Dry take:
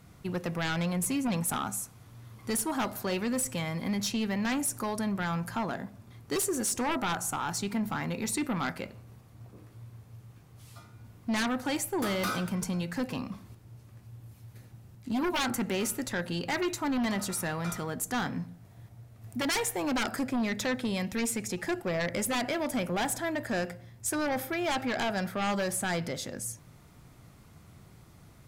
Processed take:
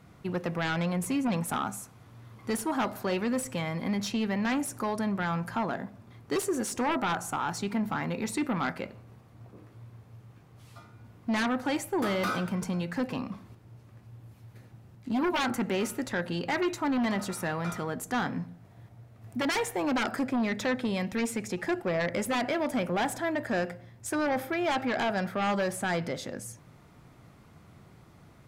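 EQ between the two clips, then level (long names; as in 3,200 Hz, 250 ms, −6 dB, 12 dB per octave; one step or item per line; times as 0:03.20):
low-shelf EQ 110 Hz −8.5 dB
high-shelf EQ 4,200 Hz −11 dB
+3.0 dB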